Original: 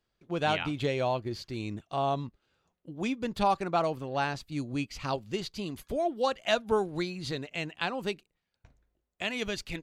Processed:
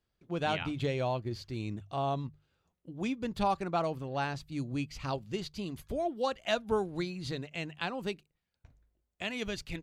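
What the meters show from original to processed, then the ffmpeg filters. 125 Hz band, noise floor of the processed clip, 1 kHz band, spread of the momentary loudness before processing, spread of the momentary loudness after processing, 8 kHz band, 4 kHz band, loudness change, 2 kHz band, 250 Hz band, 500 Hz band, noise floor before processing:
0.0 dB, −84 dBFS, −4.0 dB, 9 LU, 8 LU, −4.0 dB, −4.0 dB, −3.0 dB, −4.0 dB, −2.0 dB, −3.5 dB, −83 dBFS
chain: -af "equalizer=frequency=68:width_type=o:width=2.6:gain=7.5,bandreject=frequency=50:width_type=h:width=6,bandreject=frequency=100:width_type=h:width=6,bandreject=frequency=150:width_type=h:width=6,volume=-4dB"

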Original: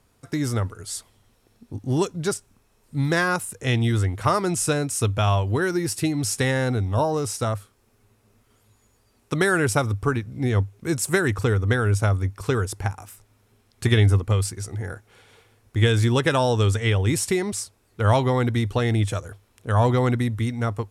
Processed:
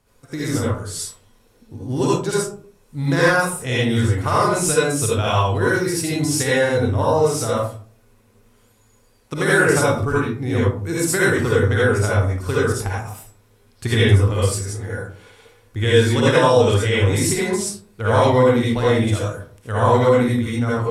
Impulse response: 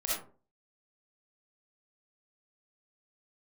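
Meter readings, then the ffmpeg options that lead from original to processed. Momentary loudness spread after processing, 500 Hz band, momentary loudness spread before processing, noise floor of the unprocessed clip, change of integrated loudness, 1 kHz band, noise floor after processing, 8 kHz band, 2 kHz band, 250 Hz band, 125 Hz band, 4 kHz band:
13 LU, +7.5 dB, 12 LU, −63 dBFS, +4.5 dB, +5.5 dB, −56 dBFS, +4.5 dB, +6.0 dB, +4.0 dB, +1.5 dB, +5.0 dB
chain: -filter_complex "[1:a]atrim=start_sample=2205,asetrate=34398,aresample=44100[link_01];[0:a][link_01]afir=irnorm=-1:irlink=0,volume=-2dB"

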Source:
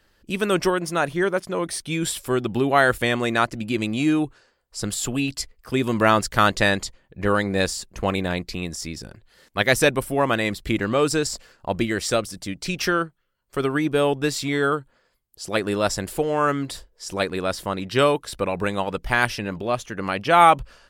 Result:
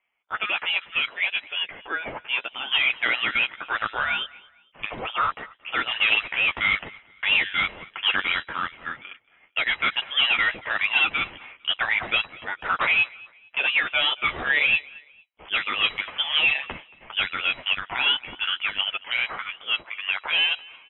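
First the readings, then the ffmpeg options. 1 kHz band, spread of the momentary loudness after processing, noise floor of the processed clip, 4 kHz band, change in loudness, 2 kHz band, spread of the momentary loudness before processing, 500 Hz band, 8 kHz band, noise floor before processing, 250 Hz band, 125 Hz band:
−7.0 dB, 11 LU, −59 dBFS, +7.0 dB, −0.5 dB, +3.5 dB, 12 LU, −18.0 dB, below −40 dB, −65 dBFS, −21.0 dB, −20.0 dB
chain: -filter_complex "[0:a]highpass=frequency=810:width=0.5412,highpass=frequency=810:width=1.3066,agate=range=-13dB:threshold=-52dB:ratio=16:detection=peak,alimiter=limit=-14dB:level=0:latency=1:release=81,dynaudnorm=framelen=210:gausssize=31:maxgain=7dB,aresample=11025,asoftclip=type=hard:threshold=-20dB,aresample=44100,flanger=delay=8.2:depth=6.1:regen=-6:speed=1:shape=sinusoidal,asplit=2[link_01][link_02];[link_02]aecho=0:1:227|454:0.0668|0.0227[link_03];[link_01][link_03]amix=inputs=2:normalize=0,lowpass=frequency=3300:width_type=q:width=0.5098,lowpass=frequency=3300:width_type=q:width=0.6013,lowpass=frequency=3300:width_type=q:width=0.9,lowpass=frequency=3300:width_type=q:width=2.563,afreqshift=-3900,volume=6.5dB" -ar 44100 -c:a aac -b:a 160k

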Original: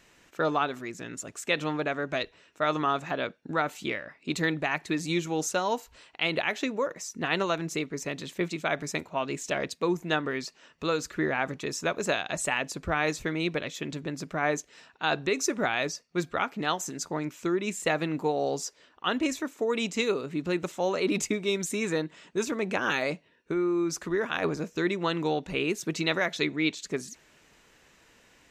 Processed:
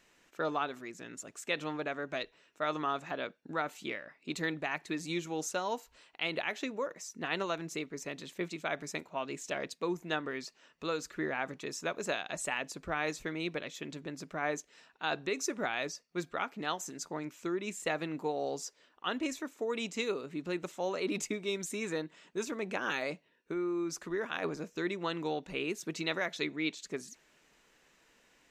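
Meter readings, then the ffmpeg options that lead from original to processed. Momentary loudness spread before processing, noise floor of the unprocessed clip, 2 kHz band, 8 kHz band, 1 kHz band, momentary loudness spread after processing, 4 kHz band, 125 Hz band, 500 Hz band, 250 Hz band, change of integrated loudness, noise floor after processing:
7 LU, −61 dBFS, −6.5 dB, −6.5 dB, −6.5 dB, 7 LU, −6.5 dB, −9.5 dB, −7.0 dB, −7.5 dB, −7.0 dB, −68 dBFS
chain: -af "equalizer=frequency=85:width_type=o:width=1.2:gain=-10,volume=-6.5dB"

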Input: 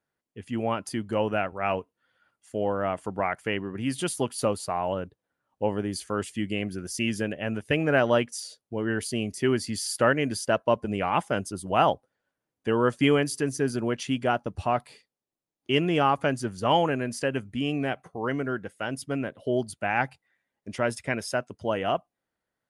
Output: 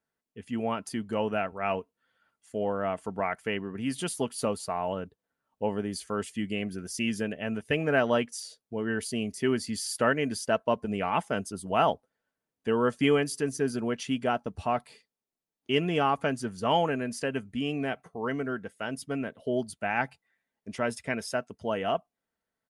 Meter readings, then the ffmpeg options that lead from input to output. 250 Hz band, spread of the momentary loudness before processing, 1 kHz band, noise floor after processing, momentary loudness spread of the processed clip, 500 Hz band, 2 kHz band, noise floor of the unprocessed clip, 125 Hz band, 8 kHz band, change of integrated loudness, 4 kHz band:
−2.0 dB, 9 LU, −3.0 dB, below −85 dBFS, 9 LU, −2.5 dB, −2.5 dB, below −85 dBFS, −4.5 dB, −2.5 dB, −2.5 dB, −2.5 dB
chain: -af "aecho=1:1:4.5:0.32,volume=-3dB"

